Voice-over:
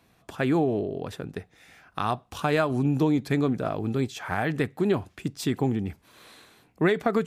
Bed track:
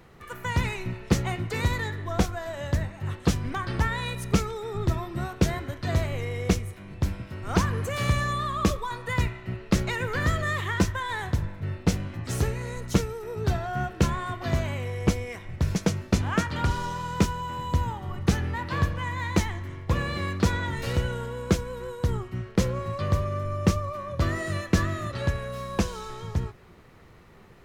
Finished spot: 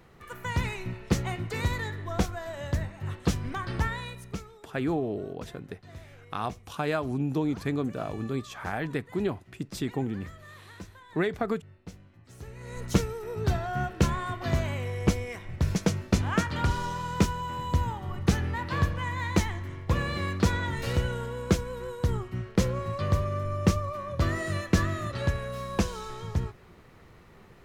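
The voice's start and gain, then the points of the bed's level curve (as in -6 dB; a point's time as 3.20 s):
4.35 s, -5.0 dB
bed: 3.87 s -3 dB
4.67 s -21 dB
12.37 s -21 dB
12.82 s -1 dB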